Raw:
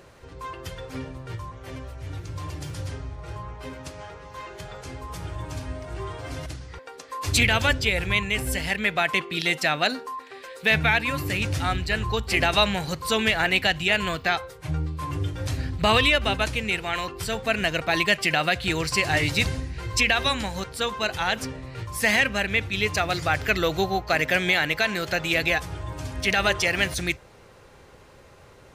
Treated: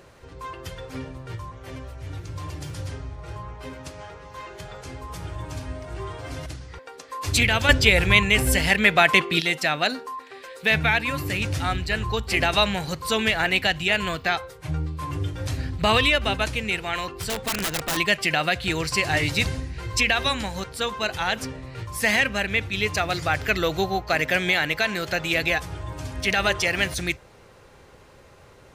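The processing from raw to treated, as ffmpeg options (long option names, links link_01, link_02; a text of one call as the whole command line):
ffmpeg -i in.wav -filter_complex "[0:a]asettb=1/sr,asplit=3[link_01][link_02][link_03];[link_01]atrim=end=17.144[link_04];[link_02]atrim=start=17.14:end=17.97,asetpts=PTS-STARTPTS,afade=type=in:duration=0.004:curve=qsin,afade=type=out:start_time=0.826:duration=0.004:curve=qsin,aeval=exprs='(mod(9.44*val(0)+1,2)-1)/9.44':channel_layout=same[link_05];[link_03]atrim=start=17.966[link_06];[link_04][link_05]acrossfade=duration=0.004:curve1=hsin:curve2=qsin[link_07];[link_07][link_06]acrossfade=duration=0.004:curve1=qsin:curve2=hsin,asplit=3[link_08][link_09][link_10];[link_08]atrim=end=7.692[link_11];[link_09]atrim=start=7.688:end=9.402,asetpts=PTS-STARTPTS,volume=6.5dB[link_12];[link_10]atrim=start=9.398[link_13];[link_11][link_12]acrossfade=duration=0.004:curve1=hsin:curve2=hsin[link_14];[link_14][link_13]acrossfade=duration=0.004:curve1=hsin:curve2=hsin" out.wav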